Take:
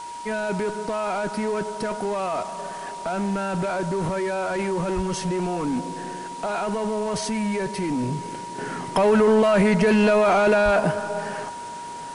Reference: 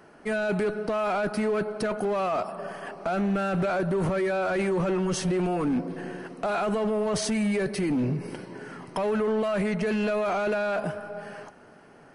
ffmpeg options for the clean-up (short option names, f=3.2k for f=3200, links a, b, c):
-filter_complex "[0:a]bandreject=f=950:w=30,asplit=3[a][b][c];[a]afade=t=out:st=4.95:d=0.02[d];[b]highpass=f=140:w=0.5412,highpass=f=140:w=1.3066,afade=t=in:st=4.95:d=0.02,afade=t=out:st=5.07:d=0.02[e];[c]afade=t=in:st=5.07:d=0.02[f];[d][e][f]amix=inputs=3:normalize=0,asplit=3[g][h][i];[g]afade=t=out:st=10.64:d=0.02[j];[h]highpass=f=140:w=0.5412,highpass=f=140:w=1.3066,afade=t=in:st=10.64:d=0.02,afade=t=out:st=10.76:d=0.02[k];[i]afade=t=in:st=10.76:d=0.02[l];[j][k][l]amix=inputs=3:normalize=0,afwtdn=0.0071,asetnsamples=n=441:p=0,asendcmd='8.58 volume volume -8.5dB',volume=0dB"